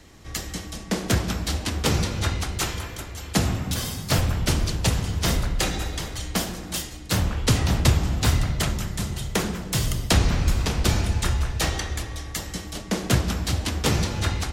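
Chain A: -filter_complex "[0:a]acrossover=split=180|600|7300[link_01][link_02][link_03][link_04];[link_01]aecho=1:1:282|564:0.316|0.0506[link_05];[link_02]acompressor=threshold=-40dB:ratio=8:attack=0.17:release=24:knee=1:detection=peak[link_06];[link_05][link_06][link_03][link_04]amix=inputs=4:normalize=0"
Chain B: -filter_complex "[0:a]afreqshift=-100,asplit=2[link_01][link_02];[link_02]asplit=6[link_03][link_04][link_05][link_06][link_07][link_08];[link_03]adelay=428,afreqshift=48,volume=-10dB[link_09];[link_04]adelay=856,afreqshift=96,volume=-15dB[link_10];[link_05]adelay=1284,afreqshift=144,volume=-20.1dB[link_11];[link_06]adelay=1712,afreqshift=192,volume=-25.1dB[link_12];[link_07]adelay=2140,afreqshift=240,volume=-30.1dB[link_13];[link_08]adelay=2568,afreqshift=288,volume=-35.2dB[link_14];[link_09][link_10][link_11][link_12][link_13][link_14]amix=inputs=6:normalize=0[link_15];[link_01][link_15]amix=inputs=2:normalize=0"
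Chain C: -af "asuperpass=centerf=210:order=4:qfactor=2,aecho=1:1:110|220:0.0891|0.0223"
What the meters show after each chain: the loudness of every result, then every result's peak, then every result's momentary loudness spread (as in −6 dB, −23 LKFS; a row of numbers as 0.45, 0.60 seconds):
−25.5, −26.0, −34.5 LKFS; −6.5, −5.5, −13.5 dBFS; 9, 7, 12 LU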